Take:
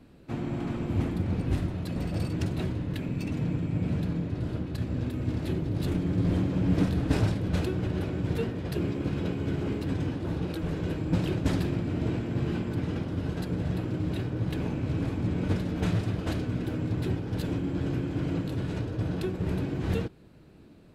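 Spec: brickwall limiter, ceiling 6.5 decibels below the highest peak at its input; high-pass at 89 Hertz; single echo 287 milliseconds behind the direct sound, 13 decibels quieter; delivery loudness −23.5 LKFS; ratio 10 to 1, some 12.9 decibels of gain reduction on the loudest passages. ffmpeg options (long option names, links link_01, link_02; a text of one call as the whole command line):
ffmpeg -i in.wav -af "highpass=89,acompressor=threshold=-34dB:ratio=10,alimiter=level_in=7.5dB:limit=-24dB:level=0:latency=1,volume=-7.5dB,aecho=1:1:287:0.224,volume=17dB" out.wav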